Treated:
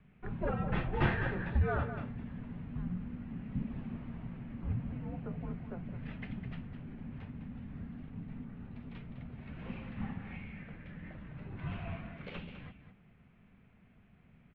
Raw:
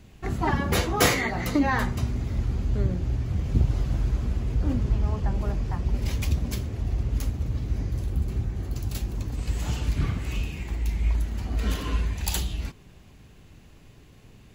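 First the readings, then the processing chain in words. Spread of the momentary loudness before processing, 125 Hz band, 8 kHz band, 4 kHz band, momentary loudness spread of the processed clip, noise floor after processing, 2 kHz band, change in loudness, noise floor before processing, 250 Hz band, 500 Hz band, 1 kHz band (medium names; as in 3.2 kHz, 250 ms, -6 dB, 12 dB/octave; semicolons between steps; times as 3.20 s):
7 LU, -12.0 dB, under -40 dB, -20.0 dB, 15 LU, -63 dBFS, -10.5 dB, -12.5 dB, -51 dBFS, -9.0 dB, -9.5 dB, -11.5 dB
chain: tilt shelf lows +3 dB, about 740 Hz; on a send: delay 206 ms -10 dB; on the sum: mistuned SSB -360 Hz 160–3200 Hz; trim -7.5 dB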